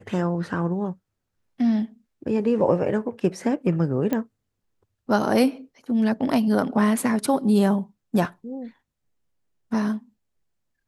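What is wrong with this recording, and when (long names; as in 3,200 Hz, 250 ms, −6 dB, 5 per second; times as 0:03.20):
0:04.13: click −12 dBFS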